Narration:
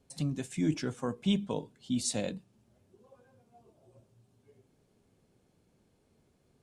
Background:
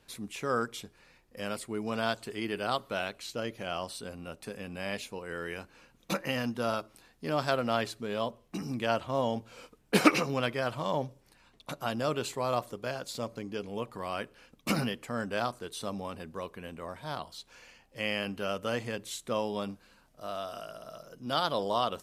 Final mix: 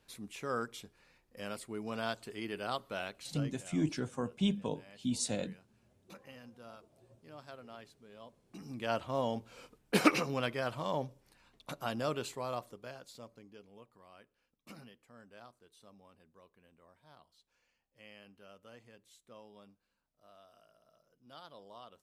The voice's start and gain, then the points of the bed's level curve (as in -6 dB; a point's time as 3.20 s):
3.15 s, -2.5 dB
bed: 3.30 s -6 dB
3.80 s -21.5 dB
8.18 s -21.5 dB
8.96 s -4 dB
12.08 s -4 dB
14.07 s -23 dB